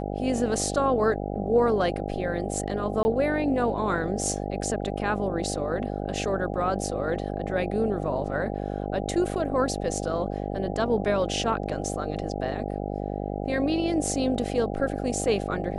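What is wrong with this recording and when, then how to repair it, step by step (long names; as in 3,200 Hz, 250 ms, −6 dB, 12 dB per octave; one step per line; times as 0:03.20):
mains buzz 50 Hz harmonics 16 −31 dBFS
0:03.03–0:03.05: drop-out 20 ms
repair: hum removal 50 Hz, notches 16
repair the gap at 0:03.03, 20 ms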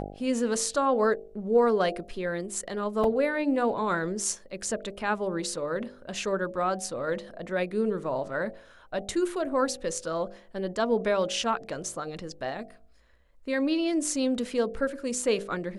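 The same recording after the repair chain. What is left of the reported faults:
none of them is left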